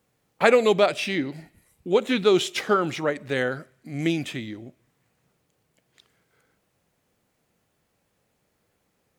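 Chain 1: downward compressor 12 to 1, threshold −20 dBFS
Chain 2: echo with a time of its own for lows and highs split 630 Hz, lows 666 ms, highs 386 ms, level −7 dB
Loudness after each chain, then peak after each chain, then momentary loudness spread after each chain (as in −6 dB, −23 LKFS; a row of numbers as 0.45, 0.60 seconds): −27.5, −23.0 LKFS; −9.0, −2.0 dBFS; 13, 18 LU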